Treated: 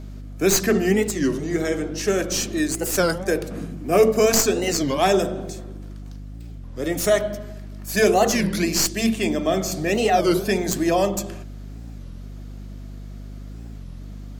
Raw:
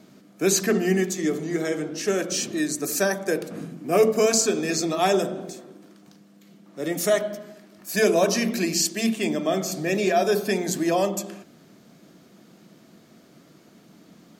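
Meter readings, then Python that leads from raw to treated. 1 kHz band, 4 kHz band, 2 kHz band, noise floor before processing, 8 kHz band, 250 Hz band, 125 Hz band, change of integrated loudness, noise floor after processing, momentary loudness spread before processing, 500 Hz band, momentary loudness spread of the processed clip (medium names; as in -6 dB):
+4.0 dB, +2.5 dB, +2.0 dB, -54 dBFS, +1.5 dB, +2.5 dB, +4.5 dB, +2.5 dB, -36 dBFS, 12 LU, +2.5 dB, 21 LU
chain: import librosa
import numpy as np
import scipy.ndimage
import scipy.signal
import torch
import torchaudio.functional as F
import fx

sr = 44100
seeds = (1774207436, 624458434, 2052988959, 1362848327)

y = fx.tracing_dist(x, sr, depth_ms=0.038)
y = fx.add_hum(y, sr, base_hz=50, snr_db=13)
y = fx.record_warp(y, sr, rpm=33.33, depth_cents=250.0)
y = y * 10.0 ** (2.5 / 20.0)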